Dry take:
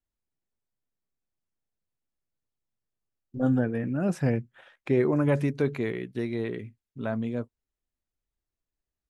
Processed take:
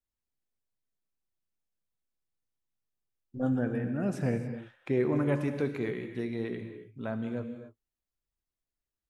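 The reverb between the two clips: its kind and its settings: gated-style reverb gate 310 ms flat, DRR 7 dB; trim -4.5 dB

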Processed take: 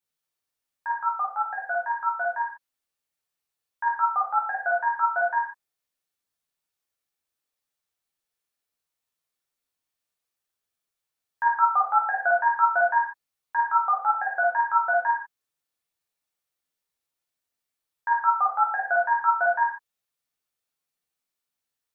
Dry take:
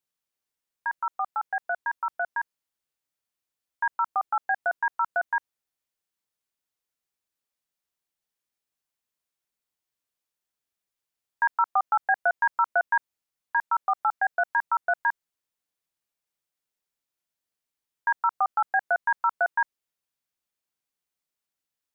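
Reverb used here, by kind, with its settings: gated-style reverb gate 170 ms falling, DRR -4.5 dB; trim -4 dB

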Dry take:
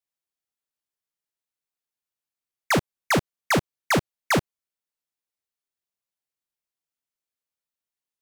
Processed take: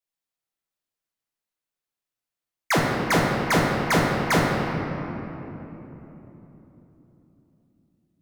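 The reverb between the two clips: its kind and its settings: simulated room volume 220 m³, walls hard, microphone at 0.66 m; trim -1.5 dB

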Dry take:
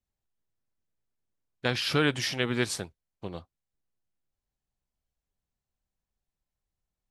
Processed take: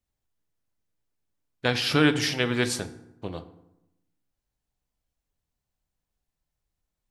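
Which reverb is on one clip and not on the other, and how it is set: FDN reverb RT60 0.86 s, low-frequency decay 1.25×, high-frequency decay 0.6×, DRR 9.5 dB; trim +3 dB

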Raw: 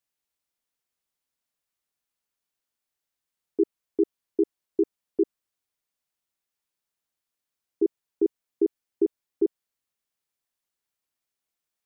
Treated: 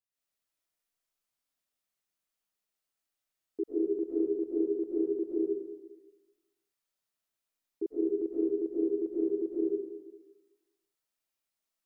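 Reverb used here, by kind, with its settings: algorithmic reverb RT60 1.2 s, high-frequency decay 1×, pre-delay 90 ms, DRR -9 dB; trim -11 dB

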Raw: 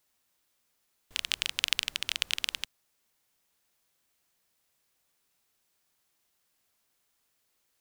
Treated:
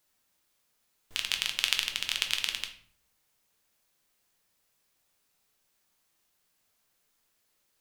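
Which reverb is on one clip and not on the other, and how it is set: simulated room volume 68 m³, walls mixed, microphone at 0.47 m

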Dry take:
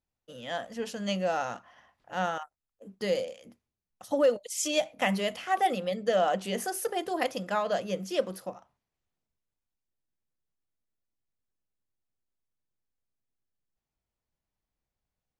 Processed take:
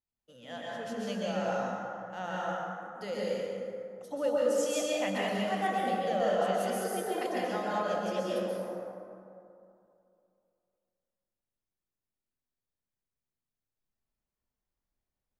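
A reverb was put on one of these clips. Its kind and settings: plate-style reverb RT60 2.6 s, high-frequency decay 0.4×, pre-delay 115 ms, DRR -6.5 dB; trim -9.5 dB

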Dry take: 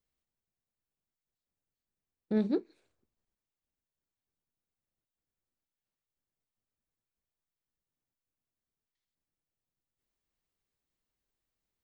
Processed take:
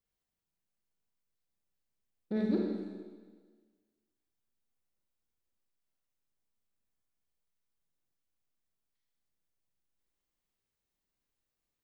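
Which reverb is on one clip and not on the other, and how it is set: Schroeder reverb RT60 1.5 s, combs from 32 ms, DRR -1 dB; trim -3.5 dB

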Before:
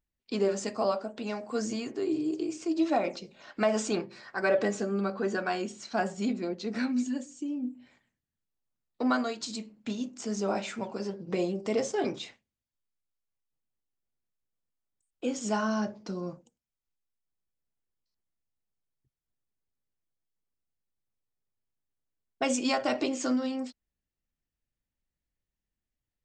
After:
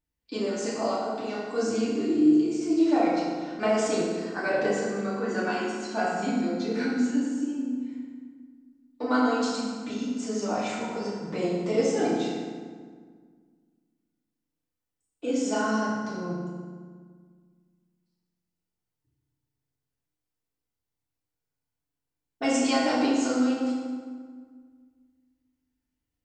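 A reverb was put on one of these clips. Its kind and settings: FDN reverb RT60 1.7 s, low-frequency decay 1.35×, high-frequency decay 0.65×, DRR -8 dB; trim -5 dB

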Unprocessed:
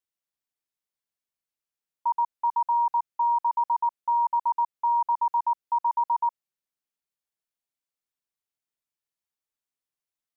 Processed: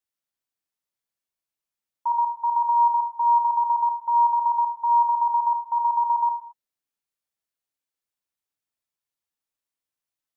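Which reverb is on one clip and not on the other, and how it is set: gated-style reverb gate 250 ms falling, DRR 5.5 dB

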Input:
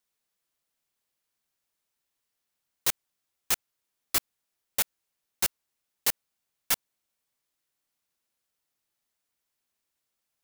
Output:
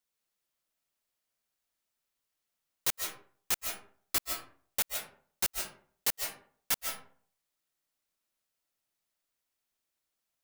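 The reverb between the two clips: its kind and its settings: algorithmic reverb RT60 0.51 s, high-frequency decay 0.55×, pre-delay 110 ms, DRR 3 dB; trim -4 dB

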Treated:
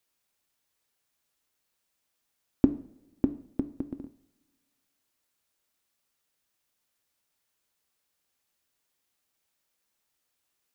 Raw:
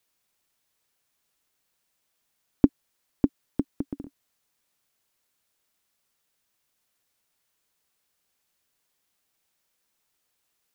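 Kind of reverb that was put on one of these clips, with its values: two-slope reverb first 0.53 s, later 1.9 s, from -21 dB, DRR 10 dB; trim -3.5 dB

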